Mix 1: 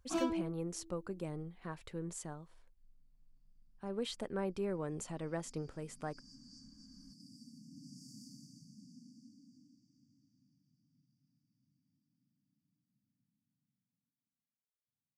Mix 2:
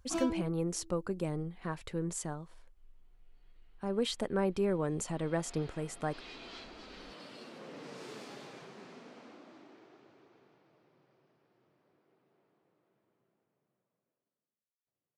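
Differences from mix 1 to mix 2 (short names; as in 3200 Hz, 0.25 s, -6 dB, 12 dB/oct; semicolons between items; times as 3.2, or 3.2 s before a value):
speech +6.5 dB; second sound: remove brick-wall FIR band-stop 290–4500 Hz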